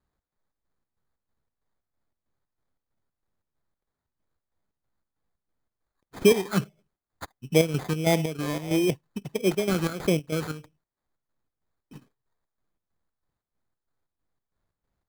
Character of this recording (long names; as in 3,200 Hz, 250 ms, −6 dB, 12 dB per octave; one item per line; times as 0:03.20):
phaser sweep stages 2, 1.5 Hz, lowest notch 560–1,600 Hz
aliases and images of a low sample rate 2,800 Hz, jitter 0%
chopped level 3.1 Hz, depth 60%, duty 60%